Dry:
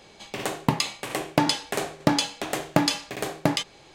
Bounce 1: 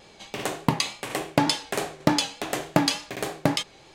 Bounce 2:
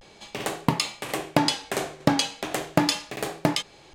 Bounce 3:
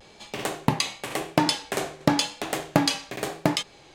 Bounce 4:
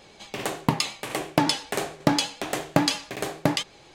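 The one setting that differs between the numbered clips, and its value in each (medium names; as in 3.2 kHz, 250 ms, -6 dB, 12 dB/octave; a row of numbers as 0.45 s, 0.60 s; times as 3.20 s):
vibrato, rate: 3.4 Hz, 0.38 Hz, 0.93 Hz, 8.9 Hz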